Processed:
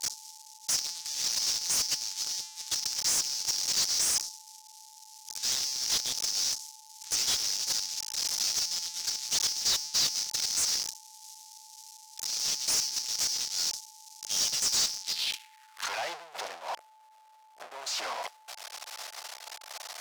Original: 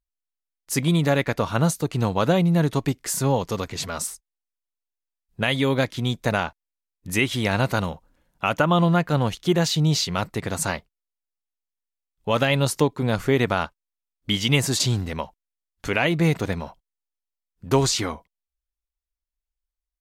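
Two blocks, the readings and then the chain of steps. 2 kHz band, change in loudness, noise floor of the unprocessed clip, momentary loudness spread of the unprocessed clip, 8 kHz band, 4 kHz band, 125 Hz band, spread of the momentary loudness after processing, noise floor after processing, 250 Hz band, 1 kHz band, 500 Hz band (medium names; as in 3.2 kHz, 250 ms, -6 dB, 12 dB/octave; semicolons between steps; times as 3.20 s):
-13.5 dB, -5.5 dB, under -85 dBFS, 11 LU, +5.0 dB, +1.0 dB, -35.5 dB, 18 LU, -57 dBFS, -32.5 dB, -14.0 dB, -23.5 dB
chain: one-bit comparator; pre-emphasis filter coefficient 0.97; expander -28 dBFS; dynamic bell 5.2 kHz, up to +6 dB, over -46 dBFS, Q 1.6; band-pass sweep 5.7 kHz -> 680 Hz, 15.02–16.04 s; overdrive pedal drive 27 dB, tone 5.4 kHz, clips at -18.5 dBFS; whistle 870 Hz -56 dBFS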